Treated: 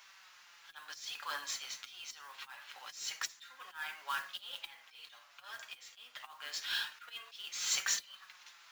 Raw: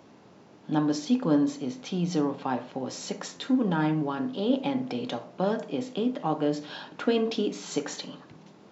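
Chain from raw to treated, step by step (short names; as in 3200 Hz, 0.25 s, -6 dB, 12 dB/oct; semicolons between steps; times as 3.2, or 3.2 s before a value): HPF 1400 Hz 24 dB/oct; auto swell 0.371 s; modulation noise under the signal 15 dB; flange 0.25 Hz, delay 5 ms, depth 3 ms, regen +43%; gain +10.5 dB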